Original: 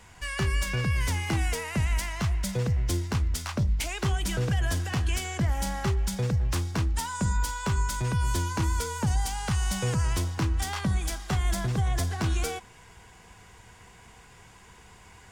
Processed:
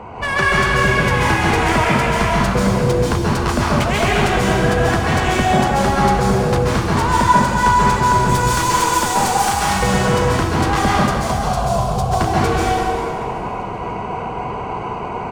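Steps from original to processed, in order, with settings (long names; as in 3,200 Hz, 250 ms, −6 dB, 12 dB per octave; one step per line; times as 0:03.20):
adaptive Wiener filter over 25 samples
0:08.29–0:09.54: RIAA equalisation recording
downward compressor 6 to 1, threshold −40 dBFS, peak gain reduction 17 dB
mid-hump overdrive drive 32 dB, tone 1,700 Hz, clips at −11 dBFS
0:10.92–0:12.09: phaser with its sweep stopped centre 750 Hz, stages 4
on a send: echo with shifted repeats 386 ms, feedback 52%, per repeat −98 Hz, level −17.5 dB
on the sum: dense smooth reverb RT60 2 s, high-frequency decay 0.85×, pre-delay 120 ms, DRR −6.5 dB
one half of a high-frequency compander decoder only
level +6 dB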